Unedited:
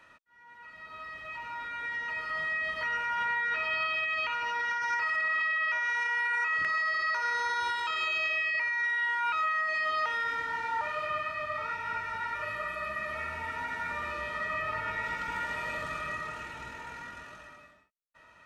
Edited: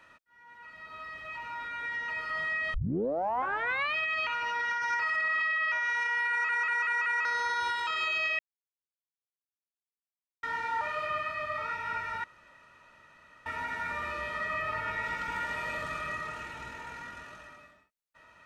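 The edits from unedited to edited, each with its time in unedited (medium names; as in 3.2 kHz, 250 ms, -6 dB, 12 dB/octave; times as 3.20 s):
2.74 s: tape start 1.22 s
6.30 s: stutter in place 0.19 s, 5 plays
8.39–10.43 s: mute
12.24–13.46 s: room tone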